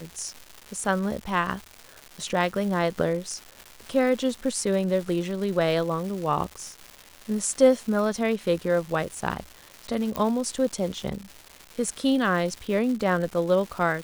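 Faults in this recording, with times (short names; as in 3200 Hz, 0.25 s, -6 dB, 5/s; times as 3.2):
crackle 410/s -33 dBFS
10.16 pop -12 dBFS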